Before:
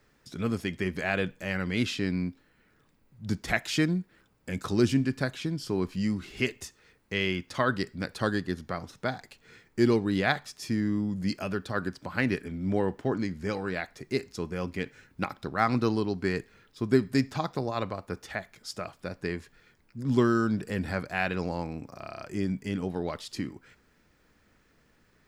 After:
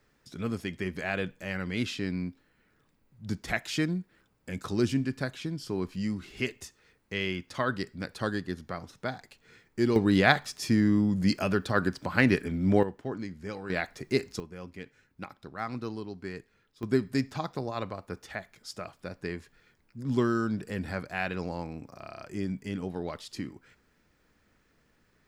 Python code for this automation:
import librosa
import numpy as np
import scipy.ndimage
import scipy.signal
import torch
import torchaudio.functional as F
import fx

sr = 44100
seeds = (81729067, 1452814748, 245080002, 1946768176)

y = fx.gain(x, sr, db=fx.steps((0.0, -3.0), (9.96, 4.5), (12.83, -6.5), (13.7, 2.5), (14.4, -10.0), (16.83, -3.0)))